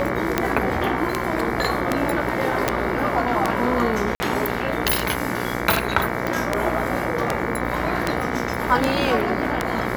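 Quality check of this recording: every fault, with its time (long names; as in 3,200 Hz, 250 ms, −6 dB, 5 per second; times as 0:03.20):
mains buzz 60 Hz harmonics 38 −27 dBFS
scratch tick 78 rpm −4 dBFS
0:02.68: click
0:04.15–0:04.20: drop-out 50 ms
0:06.27: click −11 dBFS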